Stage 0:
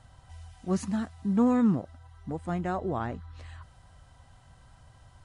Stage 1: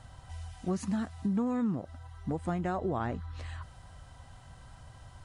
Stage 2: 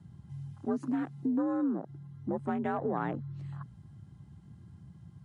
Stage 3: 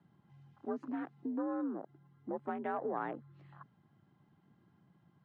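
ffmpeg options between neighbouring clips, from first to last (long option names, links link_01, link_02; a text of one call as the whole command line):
ffmpeg -i in.wav -af "acompressor=threshold=-32dB:ratio=6,volume=4dB" out.wav
ffmpeg -i in.wav -af "afreqshift=57,afwtdn=0.00631" out.wav
ffmpeg -i in.wav -af "highpass=320,lowpass=2800,volume=-3dB" out.wav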